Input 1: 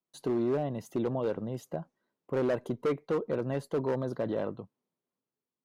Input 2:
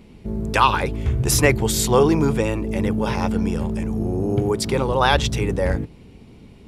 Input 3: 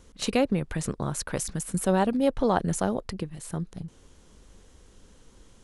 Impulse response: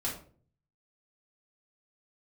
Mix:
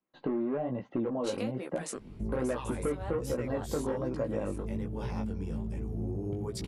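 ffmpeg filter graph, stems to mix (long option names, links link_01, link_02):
-filter_complex "[0:a]lowpass=frequency=2500:width=0.5412,lowpass=frequency=2500:width=1.3066,aecho=1:1:3.7:0.31,acontrast=80,volume=1.5dB,asplit=2[link_01][link_02];[1:a]lowshelf=frequency=470:gain=8.5,adelay=1950,volume=-7.5dB[link_03];[2:a]highpass=frequency=280:width=0.5412,highpass=frequency=280:width=1.3066,agate=range=-18dB:threshold=-56dB:ratio=16:detection=peak,adelay=1050,volume=1.5dB[link_04];[link_02]apad=whole_len=294633[link_05];[link_04][link_05]sidechaingate=range=-33dB:threshold=-47dB:ratio=16:detection=peak[link_06];[link_03][link_06]amix=inputs=2:normalize=0,acompressor=threshold=-29dB:ratio=3,volume=0dB[link_07];[link_01][link_07]amix=inputs=2:normalize=0,flanger=delay=15.5:depth=5:speed=1.2,acompressor=threshold=-30dB:ratio=4"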